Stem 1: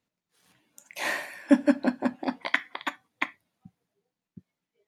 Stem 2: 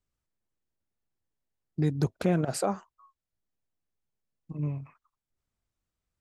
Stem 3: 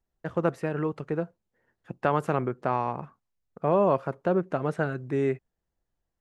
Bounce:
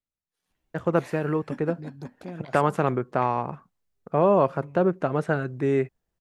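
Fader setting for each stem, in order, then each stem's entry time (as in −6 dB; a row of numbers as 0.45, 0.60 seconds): −17.0, −13.0, +3.0 decibels; 0.00, 0.00, 0.50 seconds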